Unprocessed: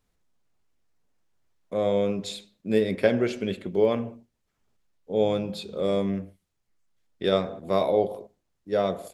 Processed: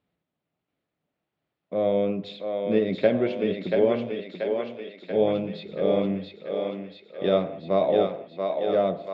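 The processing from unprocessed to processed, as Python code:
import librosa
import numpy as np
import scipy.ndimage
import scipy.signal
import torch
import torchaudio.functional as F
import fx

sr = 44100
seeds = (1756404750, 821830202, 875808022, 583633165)

y = fx.cabinet(x, sr, low_hz=110.0, low_slope=12, high_hz=3600.0, hz=(160.0, 300.0, 630.0, 1000.0, 1600.0), db=(7, 4, 5, -3, -3))
y = fx.echo_thinned(y, sr, ms=684, feedback_pct=68, hz=370.0, wet_db=-3.5)
y = y * 10.0 ** (-1.5 / 20.0)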